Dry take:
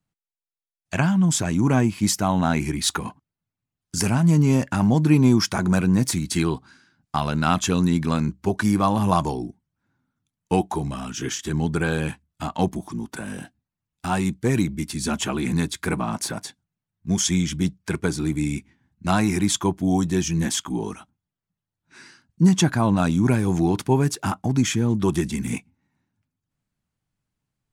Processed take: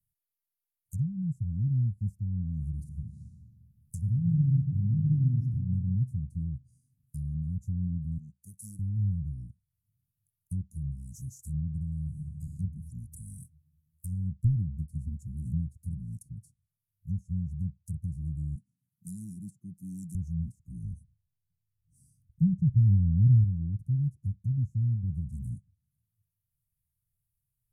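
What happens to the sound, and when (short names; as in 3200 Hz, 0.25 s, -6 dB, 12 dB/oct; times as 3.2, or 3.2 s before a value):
2.69–5.44 reverb throw, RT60 2 s, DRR 3.5 dB
8.18–8.79 weighting filter A
12.03–12.56 reverb throw, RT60 2.1 s, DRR -1.5 dB
14.08–15.78 transient shaper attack +8 dB, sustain +2 dB
18.55–20.15 HPF 170 Hz 24 dB/oct
20.83–23.44 tilt -2 dB/oct
whole clip: inverse Chebyshev band-stop 490–3400 Hz, stop band 70 dB; high shelf 2800 Hz +11.5 dB; treble ducked by the level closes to 900 Hz, closed at -27 dBFS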